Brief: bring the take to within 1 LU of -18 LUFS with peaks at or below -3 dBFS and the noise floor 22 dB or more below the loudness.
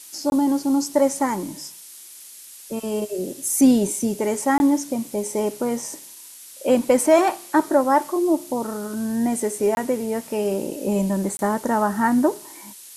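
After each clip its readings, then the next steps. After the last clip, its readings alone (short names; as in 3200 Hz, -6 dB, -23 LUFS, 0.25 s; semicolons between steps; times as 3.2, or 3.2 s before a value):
dropouts 4; longest dropout 21 ms; noise floor -43 dBFS; noise floor target -44 dBFS; loudness -21.5 LUFS; peak -5.0 dBFS; loudness target -18.0 LUFS
-> interpolate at 0.3/4.58/9.75/11.37, 21 ms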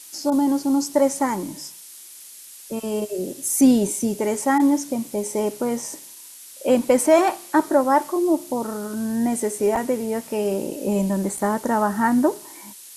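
dropouts 0; noise floor -43 dBFS; noise floor target -44 dBFS
-> denoiser 6 dB, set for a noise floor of -43 dBFS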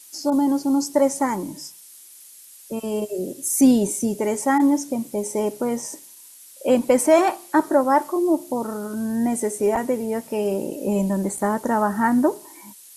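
noise floor -46 dBFS; loudness -21.5 LUFS; peak -5.0 dBFS; loudness target -18.0 LUFS
-> gain +3.5 dB; limiter -3 dBFS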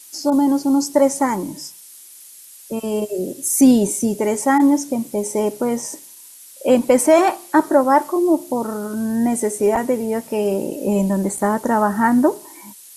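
loudness -18.0 LUFS; peak -3.0 dBFS; noise floor -43 dBFS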